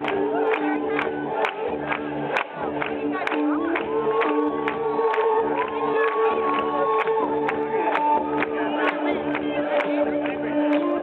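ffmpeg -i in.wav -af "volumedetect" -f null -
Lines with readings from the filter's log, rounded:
mean_volume: -23.1 dB
max_volume: -6.9 dB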